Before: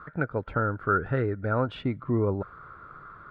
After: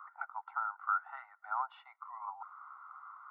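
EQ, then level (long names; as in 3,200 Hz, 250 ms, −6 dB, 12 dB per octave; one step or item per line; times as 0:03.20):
Savitzky-Golay smoothing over 65 samples
Butterworth high-pass 770 Hz 96 dB per octave
+1.0 dB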